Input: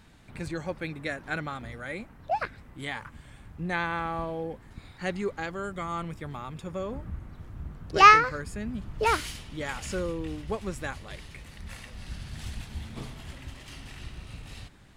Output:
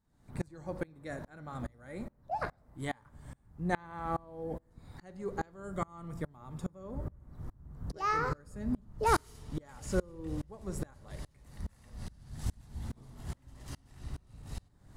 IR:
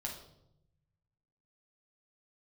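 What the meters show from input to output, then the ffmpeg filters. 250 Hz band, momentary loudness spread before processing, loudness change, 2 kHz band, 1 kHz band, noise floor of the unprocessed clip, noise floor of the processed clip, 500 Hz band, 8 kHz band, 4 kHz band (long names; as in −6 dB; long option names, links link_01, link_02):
−3.0 dB, 17 LU, −10.5 dB, −13.5 dB, −11.0 dB, −52 dBFS, −66 dBFS, −5.5 dB, −6.0 dB, −14.5 dB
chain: -filter_complex "[0:a]equalizer=frequency=2700:width=0.97:gain=-14,asplit=2[link_01][link_02];[1:a]atrim=start_sample=2205[link_03];[link_02][link_03]afir=irnorm=-1:irlink=0,volume=-8dB[link_04];[link_01][link_04]amix=inputs=2:normalize=0,aeval=exprs='val(0)*pow(10,-30*if(lt(mod(-2.4*n/s,1),2*abs(-2.4)/1000),1-mod(-2.4*n/s,1)/(2*abs(-2.4)/1000),(mod(-2.4*n/s,1)-2*abs(-2.4)/1000)/(1-2*abs(-2.4)/1000))/20)':channel_layout=same,volume=3.5dB"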